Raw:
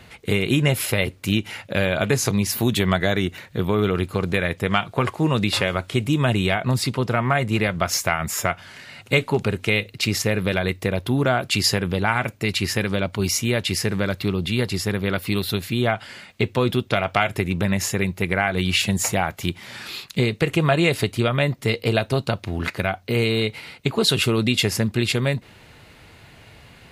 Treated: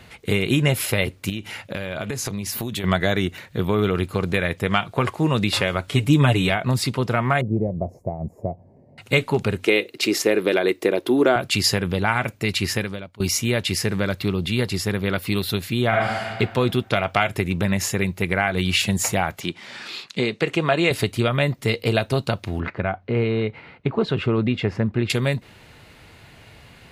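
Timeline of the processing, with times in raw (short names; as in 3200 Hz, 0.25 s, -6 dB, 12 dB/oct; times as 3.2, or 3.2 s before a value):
1.29–2.84 compressor 12:1, threshold -23 dBFS
5.87–6.5 comb 6.9 ms, depth 80%
7.41–8.98 inverse Chebyshev low-pass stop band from 1300 Hz
9.66–11.36 resonant high-pass 340 Hz, resonance Q 3.2
12.75–13.2 fade out quadratic, to -19.5 dB
15.88–16.28 reverb throw, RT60 1.6 s, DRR -5 dB
19.4–20.91 BPF 200–7000 Hz
22.6–25.1 LPF 1700 Hz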